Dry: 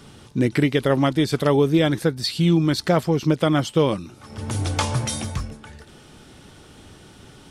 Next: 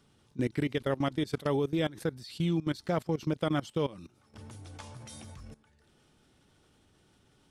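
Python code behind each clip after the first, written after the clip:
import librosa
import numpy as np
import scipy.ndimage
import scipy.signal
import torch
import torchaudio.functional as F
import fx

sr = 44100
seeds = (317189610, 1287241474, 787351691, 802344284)

y = fx.level_steps(x, sr, step_db=19)
y = F.gain(torch.from_numpy(y), -8.5).numpy()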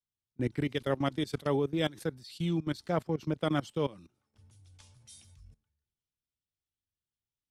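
y = fx.band_widen(x, sr, depth_pct=100)
y = F.gain(torch.from_numpy(y), -1.5).numpy()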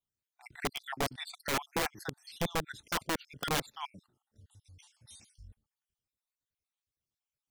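y = fx.spec_dropout(x, sr, seeds[0], share_pct=54)
y = (np.mod(10.0 ** (27.0 / 20.0) * y + 1.0, 2.0) - 1.0) / 10.0 ** (27.0 / 20.0)
y = F.gain(torch.from_numpy(y), 2.5).numpy()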